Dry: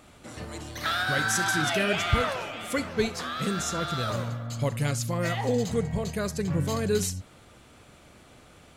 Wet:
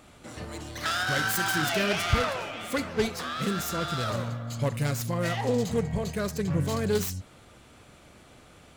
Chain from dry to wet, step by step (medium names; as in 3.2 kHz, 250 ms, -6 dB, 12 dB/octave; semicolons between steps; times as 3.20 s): self-modulated delay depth 0.16 ms; pre-echo 30 ms -20.5 dB